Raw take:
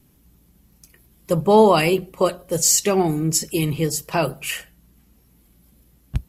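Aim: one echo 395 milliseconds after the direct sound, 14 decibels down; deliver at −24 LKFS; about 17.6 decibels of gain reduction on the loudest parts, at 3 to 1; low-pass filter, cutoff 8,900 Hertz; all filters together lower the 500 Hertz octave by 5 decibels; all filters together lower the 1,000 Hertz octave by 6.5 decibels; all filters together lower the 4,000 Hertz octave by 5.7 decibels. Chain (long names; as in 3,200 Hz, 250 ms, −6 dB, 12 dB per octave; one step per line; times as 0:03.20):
low-pass filter 8,900 Hz
parametric band 500 Hz −5 dB
parametric band 1,000 Hz −6 dB
parametric band 4,000 Hz −8 dB
downward compressor 3 to 1, threshold −38 dBFS
single-tap delay 395 ms −14 dB
level +13 dB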